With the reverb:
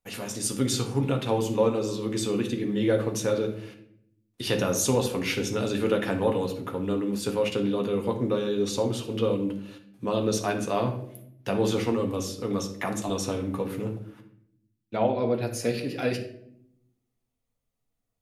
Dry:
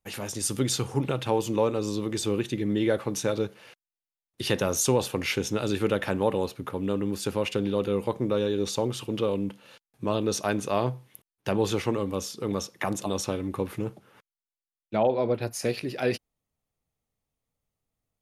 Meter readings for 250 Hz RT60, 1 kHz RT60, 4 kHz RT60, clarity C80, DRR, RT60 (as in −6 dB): 1.2 s, 0.55 s, 0.45 s, 13.0 dB, 2.5 dB, 0.70 s